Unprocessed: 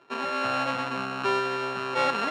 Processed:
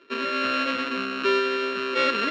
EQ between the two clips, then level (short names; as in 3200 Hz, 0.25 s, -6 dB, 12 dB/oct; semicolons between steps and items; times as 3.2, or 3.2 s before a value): Chebyshev low-pass 4200 Hz, order 2; fixed phaser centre 330 Hz, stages 4; +7.0 dB